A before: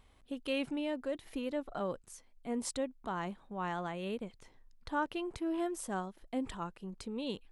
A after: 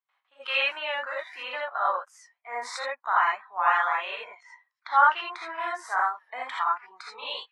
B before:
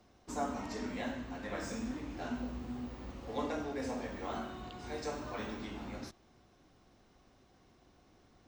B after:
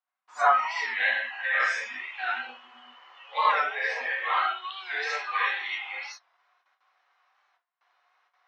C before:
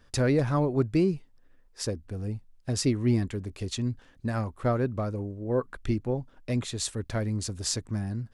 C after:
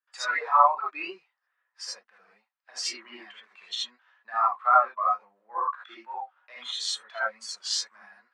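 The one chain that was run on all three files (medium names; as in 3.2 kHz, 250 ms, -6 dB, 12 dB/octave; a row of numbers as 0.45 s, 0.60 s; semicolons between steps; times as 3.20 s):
gated-style reverb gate 100 ms rising, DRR -4.5 dB; gate with hold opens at -49 dBFS; high-pass 990 Hz 24 dB/octave; spectral noise reduction 18 dB; low-pass 2.2 kHz 12 dB/octave; warped record 45 rpm, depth 100 cents; normalise loudness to -27 LUFS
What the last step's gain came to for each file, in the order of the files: +15.0 dB, +19.0 dB, +13.5 dB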